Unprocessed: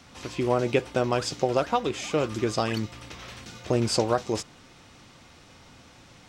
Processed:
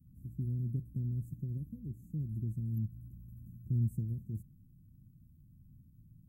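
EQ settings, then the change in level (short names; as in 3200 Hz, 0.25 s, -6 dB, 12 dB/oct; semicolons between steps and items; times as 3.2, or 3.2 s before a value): inverse Chebyshev band-stop 690–5000 Hz, stop band 70 dB; bell 75 Hz -6.5 dB 0.34 oct; 0.0 dB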